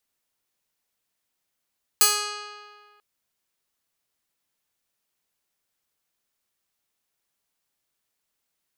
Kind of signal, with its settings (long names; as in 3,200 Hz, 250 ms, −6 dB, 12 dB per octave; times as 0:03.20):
Karplus-Strong string G#4, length 0.99 s, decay 1.81 s, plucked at 0.23, bright